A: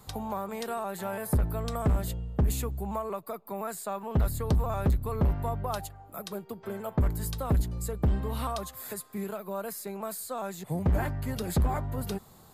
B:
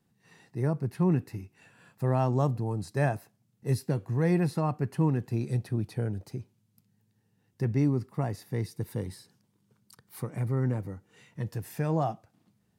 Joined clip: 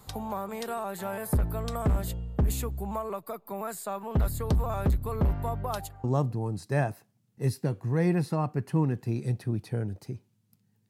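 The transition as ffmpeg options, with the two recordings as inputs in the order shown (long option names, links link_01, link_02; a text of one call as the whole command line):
ffmpeg -i cue0.wav -i cue1.wav -filter_complex "[0:a]apad=whole_dur=10.89,atrim=end=10.89,atrim=end=6.042[link_01];[1:a]atrim=start=2.288:end=7.14[link_02];[link_01][link_02]acrossfade=duration=0.004:curve1=hsin:curve2=hsin" out.wav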